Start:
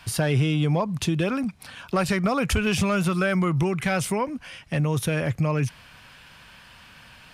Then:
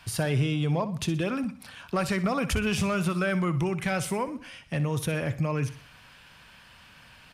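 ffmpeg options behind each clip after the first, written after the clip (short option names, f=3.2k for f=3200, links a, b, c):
-af "aecho=1:1:62|124|186|248:0.2|0.0818|0.0335|0.0138,volume=-4dB"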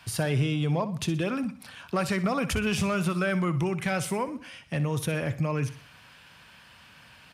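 -af "highpass=68"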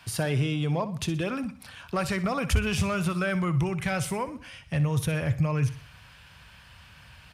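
-af "asubboost=boost=6.5:cutoff=98"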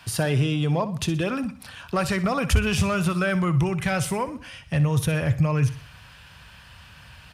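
-af "bandreject=f=2.2k:w=19,volume=4dB"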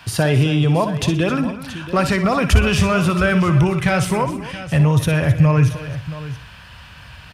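-af "equalizer=f=11k:w=0.56:g=-5.5,aecho=1:1:59|264|674:0.266|0.178|0.2,volume=6.5dB"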